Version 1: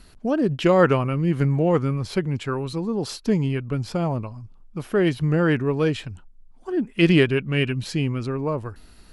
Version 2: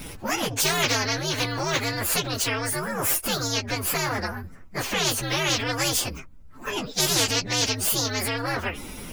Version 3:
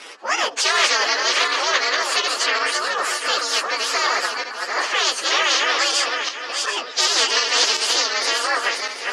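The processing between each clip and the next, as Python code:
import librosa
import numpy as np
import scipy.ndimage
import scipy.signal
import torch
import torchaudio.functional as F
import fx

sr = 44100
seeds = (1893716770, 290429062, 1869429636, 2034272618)

y1 = fx.partial_stretch(x, sr, pct=130)
y1 = fx.spectral_comp(y1, sr, ratio=4.0)
y1 = y1 * 10.0 ** (-4.0 / 20.0)
y2 = fx.reverse_delay_fb(y1, sr, ms=370, feedback_pct=46, wet_db=-3.0)
y2 = fx.cabinet(y2, sr, low_hz=420.0, low_slope=24, high_hz=7800.0, hz=(1200.0, 1800.0, 3000.0, 4700.0), db=(8, 6, 4, 5))
y2 = y2 * 10.0 ** (2.0 / 20.0)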